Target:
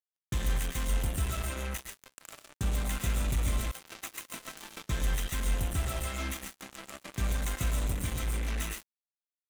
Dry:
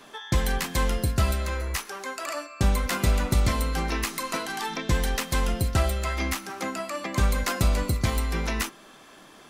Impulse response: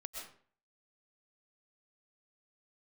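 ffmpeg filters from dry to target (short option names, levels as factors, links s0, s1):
-filter_complex "[0:a]asplit=2[s0][s1];[s1]aeval=exprs='sgn(val(0))*max(abs(val(0))-0.00794,0)':c=same,volume=0.501[s2];[s0][s2]amix=inputs=2:normalize=0,asuperstop=centerf=4800:order=20:qfactor=2.6,equalizer=f=760:w=0.46:g=-9[s3];[1:a]atrim=start_sample=2205[s4];[s3][s4]afir=irnorm=-1:irlink=0,asoftclip=type=tanh:threshold=0.178,asplit=3[s5][s6][s7];[s5]afade=t=out:st=3.7:d=0.02[s8];[s6]highpass=360,afade=t=in:st=3.7:d=0.02,afade=t=out:st=4.31:d=0.02[s9];[s7]afade=t=in:st=4.31:d=0.02[s10];[s8][s9][s10]amix=inputs=3:normalize=0,acrusher=bits=4:mix=0:aa=0.5,volume=0.562"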